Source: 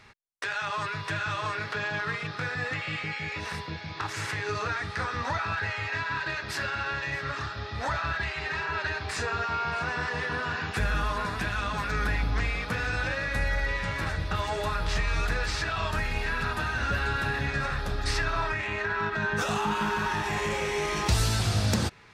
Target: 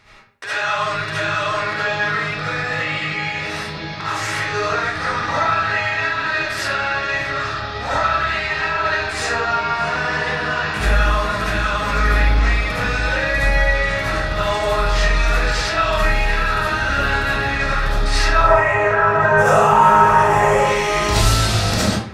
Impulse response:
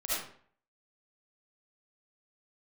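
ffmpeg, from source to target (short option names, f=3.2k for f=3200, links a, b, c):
-filter_complex "[0:a]asettb=1/sr,asplit=3[a][b][c];[a]atrim=end=18.364[d];[b]atrim=start=18.36:end=20.59,asetpts=PTS-STARTPTS,afade=t=in:d=0.004:c=qsin,afade=t=out:st=2.226:d=0.004:c=qsin,equalizer=f=125:t=o:w=1:g=9,equalizer=f=250:t=o:w=1:g=-9,equalizer=f=500:t=o:w=1:g=12,equalizer=f=1k:t=o:w=1:g=5,equalizer=f=4k:t=o:w=1:g=-12,equalizer=f=8k:t=o:w=1:g=3[e];[c]atrim=start=20.586[f];[d][e]acrossfade=d=0.004:c1=hsin:c2=qsin[g];[g][f]acrossfade=d=0.004:c1=qsin:c2=hsin[h];[1:a]atrim=start_sample=2205[i];[h][i]afir=irnorm=-1:irlink=0,volume=5dB"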